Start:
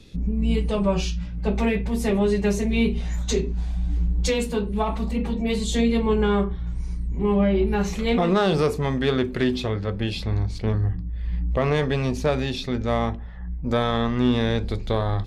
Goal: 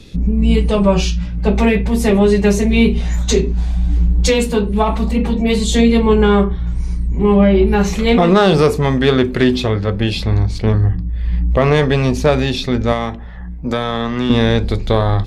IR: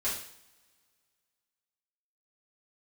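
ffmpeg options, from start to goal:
-filter_complex "[0:a]asettb=1/sr,asplit=3[link_01][link_02][link_03];[link_01]atrim=end=12.924[link_04];[link_02]atrim=start=12.92:end=14.3,asetpts=PTS-STARTPTS,afade=type=in:duration=0.004:curve=qsin,afade=type=out:start_time=1.376:duration=0.004:curve=qsin,acrossover=split=170|1300[link_05][link_06][link_07];[link_05]acompressor=threshold=-37dB:ratio=4[link_08];[link_06]acompressor=threshold=-27dB:ratio=4[link_09];[link_07]acompressor=threshold=-33dB:ratio=4[link_10];[link_08][link_09][link_10]amix=inputs=3:normalize=0[link_11];[link_03]atrim=start=14.296[link_12];[link_04][link_11]acrossfade=duration=0.004:curve1=hsin:curve2=qsin[link_13];[link_13][link_12]acrossfade=duration=0.004:curve1=qsin:curve2=hsin,volume=9dB"

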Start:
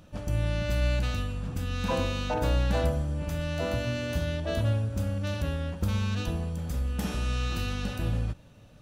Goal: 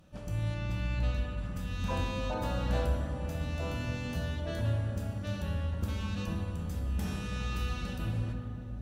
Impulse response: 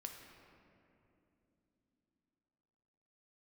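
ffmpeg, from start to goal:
-filter_complex "[0:a]asettb=1/sr,asplit=3[link_01][link_02][link_03];[link_01]atrim=end=0.544[link_04];[link_02]atrim=start=0.54:end=1.38,asetpts=PTS-STARTPTS,afade=type=in:duration=0.004:curve=qsin,afade=type=out:start_time=0.836:duration=0.004:curve=qsin,highshelf=frequency=5800:gain=-10.5[link_05];[link_03]atrim=start=1.376[link_06];[link_04][link_05]acrossfade=duration=0.004:curve1=hsin:curve2=qsin[link_07];[link_07][link_06]acrossfade=duration=0.004:curve1=qsin:curve2=hsin[link_08];[1:a]atrim=start_sample=2205,asetrate=34398,aresample=44100[link_09];[link_08][link_09]afir=irnorm=-1:irlink=0,volume=-2.5dB"

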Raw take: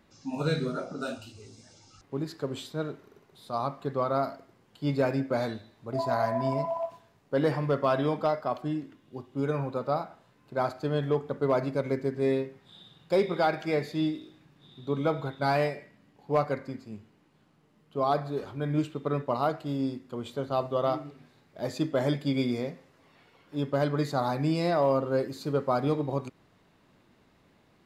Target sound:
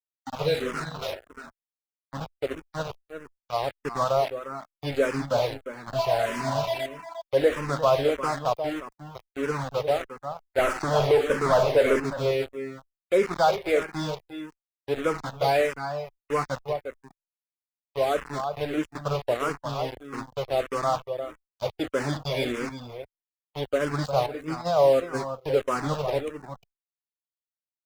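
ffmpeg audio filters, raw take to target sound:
ffmpeg -i in.wav -filter_complex "[0:a]adynamicequalizer=threshold=0.00891:dfrequency=500:dqfactor=1.9:tfrequency=500:tqfactor=1.9:attack=5:release=100:ratio=0.375:range=2.5:mode=boostabove:tftype=bell,asettb=1/sr,asplit=3[link_01][link_02][link_03];[link_01]atrim=end=10.584[link_04];[link_02]atrim=start=10.58:end=12,asetpts=PTS-STARTPTS,afade=type=in:duration=0.004:curve=qsin,afade=type=out:start_time=1.416:duration=0.004:curve=qsin,asplit=2[link_05][link_06];[link_06]highpass=frequency=720:poles=1,volume=26dB,asoftclip=type=tanh:threshold=-12.5dB[link_07];[link_05][link_07]amix=inputs=2:normalize=0,lowpass=frequency=1200:poles=1,volume=-6dB[link_08];[link_03]atrim=start=11.996[link_09];[link_04][link_08]acrossfade=duration=0.004:curve1=hsin:curve2=qsin[link_10];[link_10][link_09]acrossfade=duration=0.004:curve1=qsin:curve2=hsin,aeval=exprs='val(0)*gte(abs(val(0)),0.0299)':channel_layout=same,asettb=1/sr,asplit=3[link_11][link_12][link_13];[link_11]atrim=end=24.264[link_14];[link_12]atrim=start=24.26:end=25.44,asetpts=PTS-STARTPTS,afade=type=in:duration=0.004:curve=qsin,afade=type=out:start_time=1.176:duration=0.004:curve=qsin,agate=range=-14dB:threshold=-23dB:ratio=16:detection=peak[link_15];[link_13]atrim=start=25.436[link_16];[link_14][link_15]acrossfade=duration=0.004:curve1=hsin:curve2=qsin[link_17];[link_17][link_16]acrossfade=duration=0.004:curve1=qsin:curve2=hsin,equalizer=frequency=250:width=0.66:gain=-7,asplit=2[link_18][link_19];[link_19]aecho=0:1:354:0.355[link_20];[link_18][link_20]amix=inputs=2:normalize=0,afftdn=noise_reduction=13:noise_floor=-49,asplit=2[link_21][link_22];[link_22]afreqshift=-1.6[link_23];[link_21][link_23]amix=inputs=2:normalize=1,volume=6dB" out.wav

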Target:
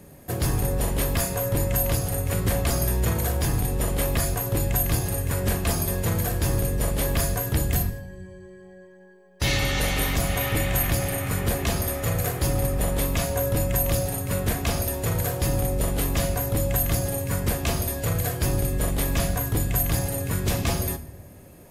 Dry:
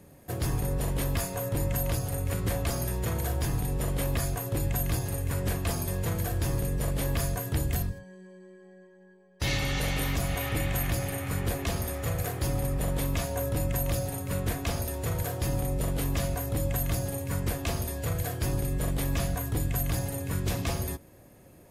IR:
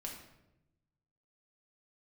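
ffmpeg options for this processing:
-filter_complex "[0:a]asplit=2[link_01][link_02];[1:a]atrim=start_sample=2205,highshelf=frequency=6400:gain=8.5[link_03];[link_02][link_03]afir=irnorm=-1:irlink=0,volume=-5dB[link_04];[link_01][link_04]amix=inputs=2:normalize=0,volume=3dB"

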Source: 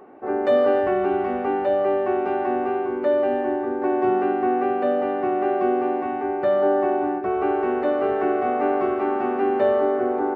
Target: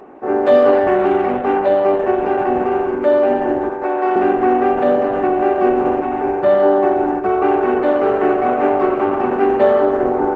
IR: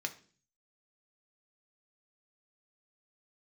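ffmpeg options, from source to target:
-filter_complex "[0:a]asettb=1/sr,asplit=3[link_01][link_02][link_03];[link_01]atrim=end=3.694[link_04];[link_02]atrim=start=3.69:end=4.16,asetpts=PTS-STARTPTS,afade=type=in:duration=0.004:curve=qsin,afade=type=out:start_time=0.466:duration=0.004:curve=qsin,highpass=480[link_05];[link_03]atrim=start=4.156[link_06];[link_04][link_05]acrossfade=duration=0.004:curve1=hsin:curve2=qsin[link_07];[link_07][link_06]acrossfade=duration=0.004:curve1=qsin:curve2=hsin,volume=7dB" -ar 48000 -c:a libopus -b:a 12k

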